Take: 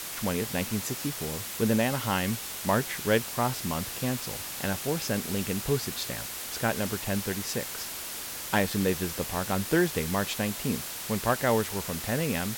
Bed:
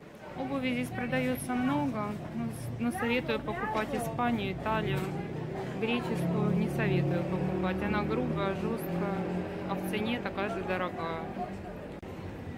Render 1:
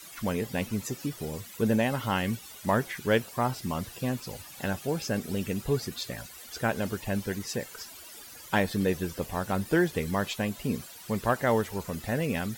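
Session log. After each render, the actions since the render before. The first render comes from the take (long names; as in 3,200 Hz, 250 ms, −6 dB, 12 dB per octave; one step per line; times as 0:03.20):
broadband denoise 15 dB, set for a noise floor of −38 dBFS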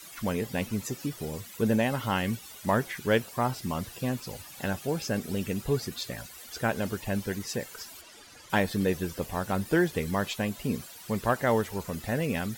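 0:08.01–0:08.50: high-frequency loss of the air 56 metres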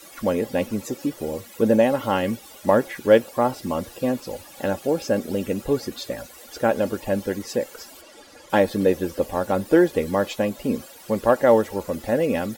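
parametric band 490 Hz +11 dB 1.7 octaves
comb filter 3.6 ms, depth 42%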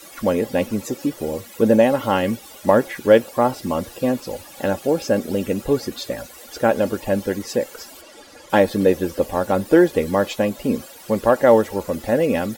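level +3 dB
brickwall limiter −2 dBFS, peak gain reduction 1.5 dB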